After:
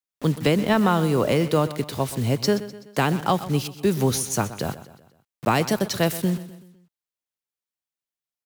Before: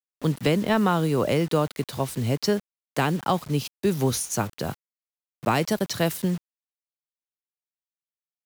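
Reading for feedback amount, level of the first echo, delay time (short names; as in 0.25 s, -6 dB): 48%, -15.0 dB, 0.126 s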